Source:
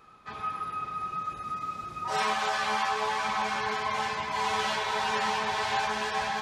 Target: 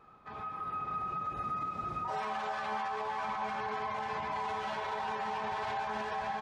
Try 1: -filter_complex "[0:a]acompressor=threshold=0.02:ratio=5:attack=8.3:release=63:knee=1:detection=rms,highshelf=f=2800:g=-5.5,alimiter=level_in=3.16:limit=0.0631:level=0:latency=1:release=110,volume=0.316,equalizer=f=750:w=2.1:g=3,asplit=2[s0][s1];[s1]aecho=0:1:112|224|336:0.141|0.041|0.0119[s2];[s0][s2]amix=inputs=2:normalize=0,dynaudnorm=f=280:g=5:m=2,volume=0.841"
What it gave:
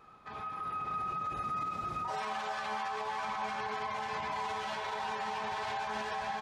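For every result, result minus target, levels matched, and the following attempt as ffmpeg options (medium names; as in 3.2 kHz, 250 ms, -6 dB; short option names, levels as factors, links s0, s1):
compression: peak gain reduction +9.5 dB; 4 kHz band +3.5 dB
-filter_complex "[0:a]highshelf=f=2800:g=-5.5,alimiter=level_in=3.16:limit=0.0631:level=0:latency=1:release=110,volume=0.316,equalizer=f=750:w=2.1:g=3,asplit=2[s0][s1];[s1]aecho=0:1:112|224|336:0.141|0.041|0.0119[s2];[s0][s2]amix=inputs=2:normalize=0,dynaudnorm=f=280:g=5:m=2,volume=0.841"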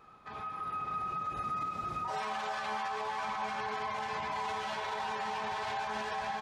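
4 kHz band +4.0 dB
-filter_complex "[0:a]highshelf=f=2800:g=-14.5,alimiter=level_in=3.16:limit=0.0631:level=0:latency=1:release=110,volume=0.316,equalizer=f=750:w=2.1:g=3,asplit=2[s0][s1];[s1]aecho=0:1:112|224|336:0.141|0.041|0.0119[s2];[s0][s2]amix=inputs=2:normalize=0,dynaudnorm=f=280:g=5:m=2,volume=0.841"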